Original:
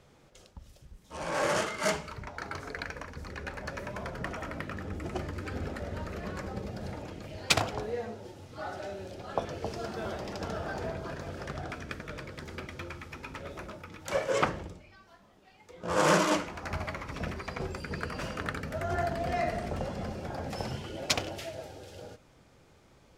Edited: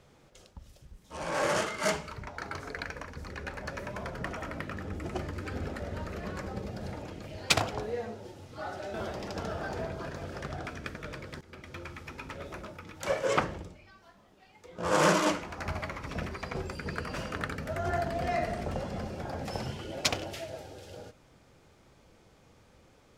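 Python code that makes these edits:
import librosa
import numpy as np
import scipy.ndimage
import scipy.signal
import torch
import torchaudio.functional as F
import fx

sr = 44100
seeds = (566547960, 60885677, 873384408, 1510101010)

y = fx.edit(x, sr, fx.cut(start_s=8.94, length_s=1.05),
    fx.fade_in_from(start_s=12.46, length_s=0.66, curve='qsin', floor_db=-18.5), tone=tone)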